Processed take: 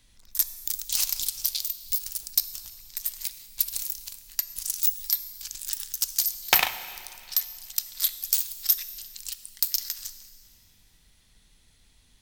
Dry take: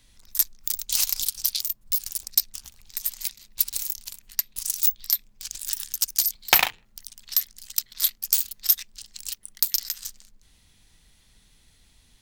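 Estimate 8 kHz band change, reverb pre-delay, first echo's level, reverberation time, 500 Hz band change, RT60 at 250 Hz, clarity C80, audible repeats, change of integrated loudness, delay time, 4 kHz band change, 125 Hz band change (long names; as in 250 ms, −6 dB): −2.0 dB, 6 ms, no echo audible, 2.2 s, −2.0 dB, 2.2 s, 13.5 dB, no echo audible, −2.5 dB, no echo audible, −2.0 dB, can't be measured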